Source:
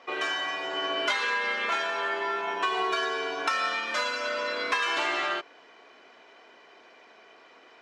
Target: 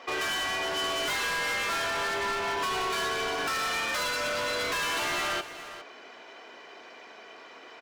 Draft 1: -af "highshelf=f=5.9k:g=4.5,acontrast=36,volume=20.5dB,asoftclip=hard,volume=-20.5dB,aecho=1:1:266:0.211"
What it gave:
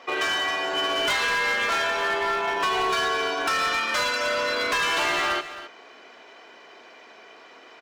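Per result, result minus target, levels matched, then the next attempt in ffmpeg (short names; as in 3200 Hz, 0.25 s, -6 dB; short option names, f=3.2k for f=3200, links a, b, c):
echo 0.143 s early; overloaded stage: distortion -6 dB
-af "highshelf=f=5.9k:g=4.5,acontrast=36,volume=20.5dB,asoftclip=hard,volume=-20.5dB,aecho=1:1:409:0.211"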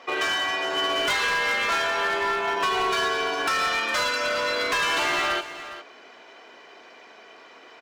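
overloaded stage: distortion -6 dB
-af "highshelf=f=5.9k:g=4.5,acontrast=36,volume=28.5dB,asoftclip=hard,volume=-28.5dB,aecho=1:1:409:0.211"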